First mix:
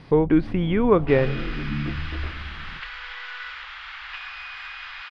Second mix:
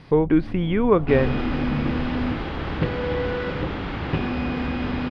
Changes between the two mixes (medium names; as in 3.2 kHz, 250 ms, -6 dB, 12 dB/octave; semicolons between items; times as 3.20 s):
second sound: remove high-pass 1.3 kHz 24 dB/octave; master: remove brick-wall FIR low-pass 12 kHz